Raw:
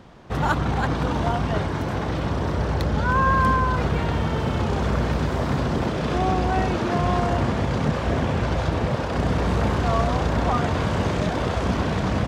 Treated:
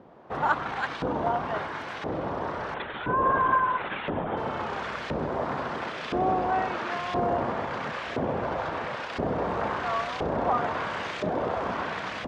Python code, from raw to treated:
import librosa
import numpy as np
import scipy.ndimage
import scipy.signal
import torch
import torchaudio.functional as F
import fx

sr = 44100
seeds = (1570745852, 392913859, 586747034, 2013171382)

y = fx.lpc_vocoder(x, sr, seeds[0], excitation='whisper', order=16, at=(2.74, 4.37))
y = fx.filter_lfo_bandpass(y, sr, shape='saw_up', hz=0.98, low_hz=450.0, high_hz=2800.0, q=0.86)